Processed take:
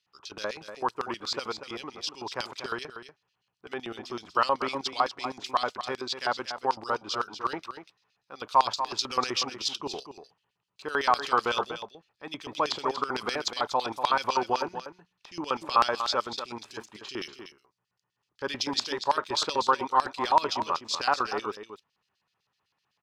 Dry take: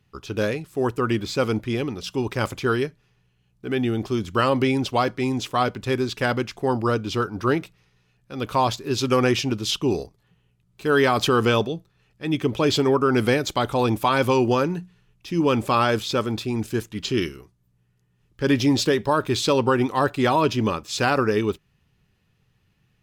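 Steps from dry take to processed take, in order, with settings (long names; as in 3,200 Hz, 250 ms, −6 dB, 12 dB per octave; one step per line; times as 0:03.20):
auto-filter band-pass square 7.9 Hz 990–4,700 Hz
on a send: single-tap delay 240 ms −10 dB
on the sum: level +3.5 dB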